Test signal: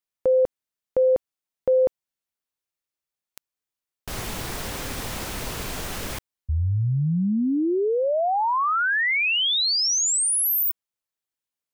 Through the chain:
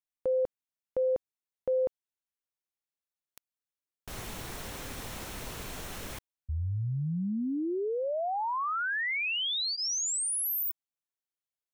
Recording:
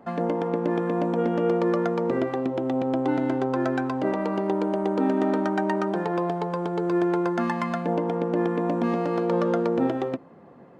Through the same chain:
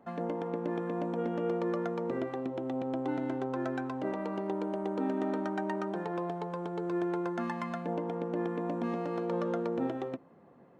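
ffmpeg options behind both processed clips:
-af "bandreject=f=4.8k:w=17,volume=-9dB"

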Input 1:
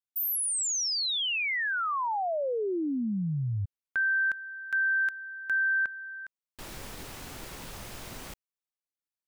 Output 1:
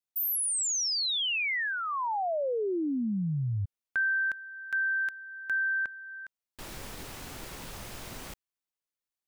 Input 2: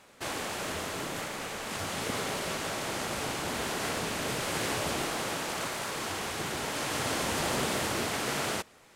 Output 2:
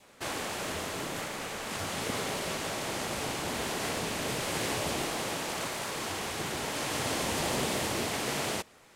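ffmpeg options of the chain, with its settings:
-af "adynamicequalizer=threshold=0.00794:dfrequency=1400:dqfactor=2.5:tfrequency=1400:tqfactor=2.5:attack=5:release=100:ratio=0.375:range=3:mode=cutabove:tftype=bell"

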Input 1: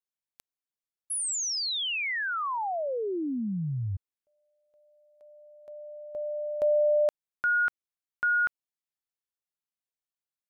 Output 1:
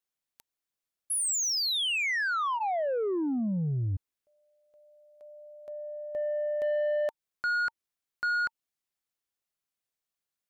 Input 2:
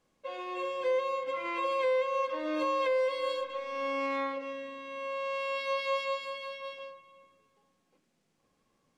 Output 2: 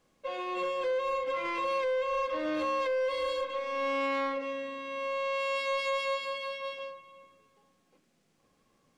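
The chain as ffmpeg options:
-af "bandreject=f=910:w=19,alimiter=level_in=1dB:limit=-24dB:level=0:latency=1:release=112,volume=-1dB,asoftclip=type=tanh:threshold=-29dB,volume=4dB"

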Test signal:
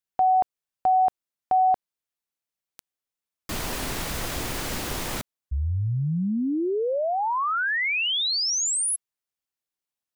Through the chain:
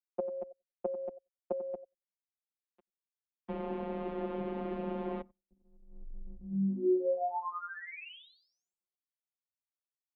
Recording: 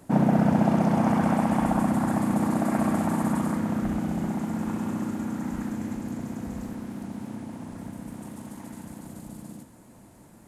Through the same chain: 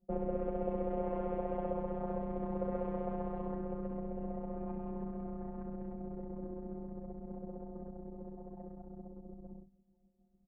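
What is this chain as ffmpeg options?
-filter_complex "[0:a]acrossover=split=140|2100[a][b][c];[a]acompressor=threshold=-41dB:ratio=3[d];[b]acompressor=threshold=-35dB:ratio=3[e];[c]acompressor=threshold=-34dB:ratio=5[f];[d][e][f]amix=inputs=3:normalize=0,asplit=2[g][h];[h]aecho=0:1:93|186|279:0.282|0.062|0.0136[i];[g][i]amix=inputs=2:normalize=0,anlmdn=0.631,afftfilt=real='hypot(re,im)*cos(PI*b)':imag='0':win_size=1024:overlap=0.75,firequalizer=gain_entry='entry(280,0);entry(410,12);entry(1800,-11)':delay=0.05:min_phase=1,highpass=f=210:t=q:w=0.5412,highpass=f=210:t=q:w=1.307,lowpass=f=3.1k:t=q:w=0.5176,lowpass=f=3.1k:t=q:w=0.7071,lowpass=f=3.1k:t=q:w=1.932,afreqshift=-150,volume=-1.5dB"

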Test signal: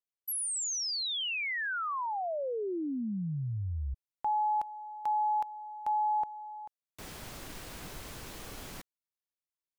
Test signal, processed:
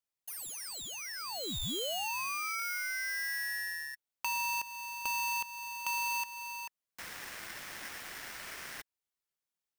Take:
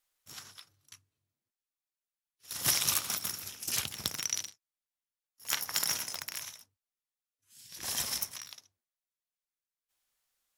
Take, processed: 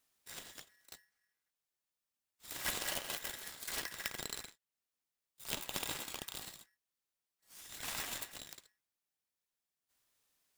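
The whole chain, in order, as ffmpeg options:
-filter_complex "[0:a]acrossover=split=99|1700[a][b][c];[a]acompressor=threshold=-54dB:ratio=6[d];[b]acompressor=threshold=-39dB:ratio=2.5[e];[c]acompressor=threshold=-53dB:ratio=2[f];[d][e][f]amix=inputs=3:normalize=0,aeval=exprs='val(0)*sgn(sin(2*PI*1800*n/s))':c=same,volume=2dB"

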